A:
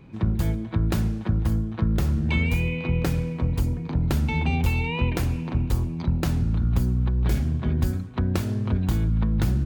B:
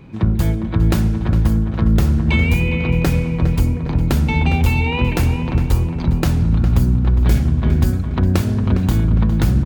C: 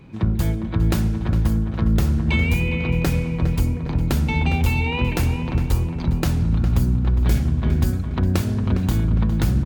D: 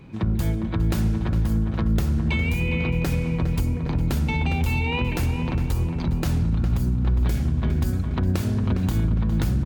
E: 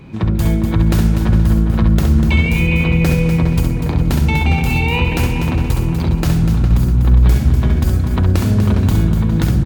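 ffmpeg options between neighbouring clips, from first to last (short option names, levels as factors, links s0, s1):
-filter_complex "[0:a]asplit=2[s0][s1];[s1]adelay=408,lowpass=f=2900:p=1,volume=0.355,asplit=2[s2][s3];[s3]adelay=408,lowpass=f=2900:p=1,volume=0.53,asplit=2[s4][s5];[s5]adelay=408,lowpass=f=2900:p=1,volume=0.53,asplit=2[s6][s7];[s7]adelay=408,lowpass=f=2900:p=1,volume=0.53,asplit=2[s8][s9];[s9]adelay=408,lowpass=f=2900:p=1,volume=0.53,asplit=2[s10][s11];[s11]adelay=408,lowpass=f=2900:p=1,volume=0.53[s12];[s0][s2][s4][s6][s8][s10][s12]amix=inputs=7:normalize=0,volume=2.24"
-af "equalizer=f=12000:t=o:w=2.9:g=2.5,volume=0.631"
-af "alimiter=limit=0.188:level=0:latency=1:release=87"
-af "aecho=1:1:67.06|244.9:0.501|0.398,volume=2.24"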